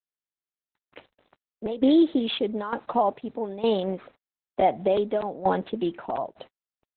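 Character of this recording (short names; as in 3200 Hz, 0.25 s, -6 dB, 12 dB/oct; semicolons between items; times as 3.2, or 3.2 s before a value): a quantiser's noise floor 10-bit, dither none; tremolo saw down 1.1 Hz, depth 80%; Opus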